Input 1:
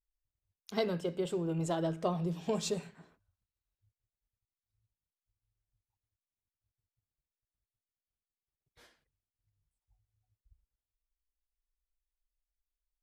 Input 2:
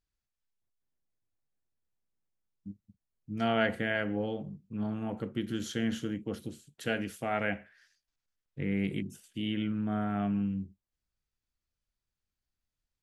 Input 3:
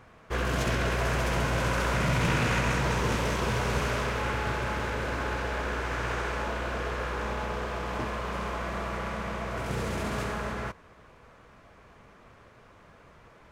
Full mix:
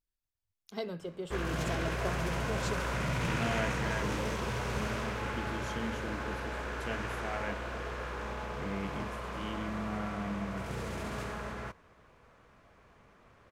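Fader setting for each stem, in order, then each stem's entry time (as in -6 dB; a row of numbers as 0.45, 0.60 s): -5.5, -7.5, -6.5 dB; 0.00, 0.00, 1.00 s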